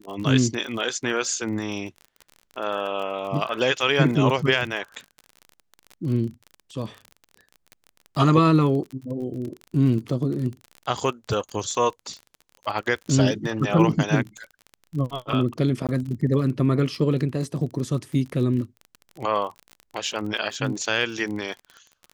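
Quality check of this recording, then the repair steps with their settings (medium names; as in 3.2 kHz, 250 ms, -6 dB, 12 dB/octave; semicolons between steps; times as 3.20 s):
crackle 32 per s -31 dBFS
15.87–15.89 s: dropout 17 ms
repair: de-click; interpolate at 15.87 s, 17 ms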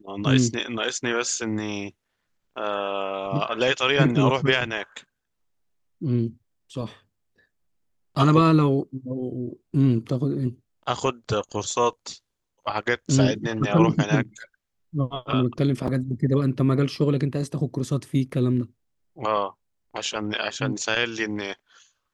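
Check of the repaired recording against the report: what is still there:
nothing left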